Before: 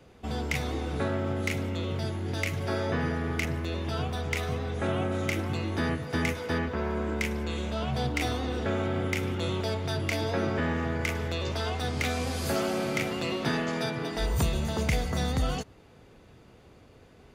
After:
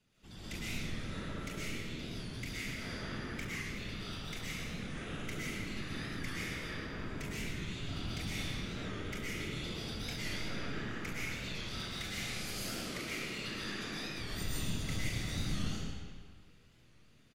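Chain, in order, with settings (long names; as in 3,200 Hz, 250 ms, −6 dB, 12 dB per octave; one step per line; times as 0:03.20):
guitar amp tone stack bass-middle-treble 6-0-2
loudspeakers that aren't time-aligned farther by 24 metres −11 dB, 52 metres −12 dB
random phases in short frames
low-shelf EQ 390 Hz −8.5 dB
comb and all-pass reverb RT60 1.8 s, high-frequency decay 0.8×, pre-delay 85 ms, DRR −8.5 dB
wow of a warped record 45 rpm, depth 100 cents
level +3 dB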